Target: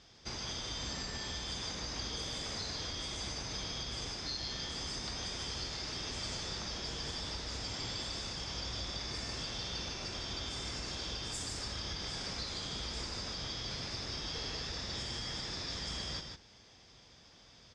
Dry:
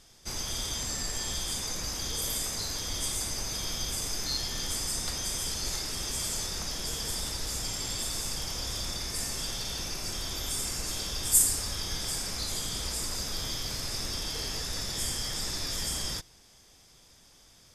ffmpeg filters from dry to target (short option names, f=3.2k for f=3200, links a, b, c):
-filter_complex "[0:a]lowpass=f=5.3k:w=0.5412,lowpass=f=5.3k:w=1.3066,acompressor=threshold=-36dB:ratio=6,highpass=50,asplit=2[a][b];[b]aecho=0:1:150:0.531[c];[a][c]amix=inputs=2:normalize=0"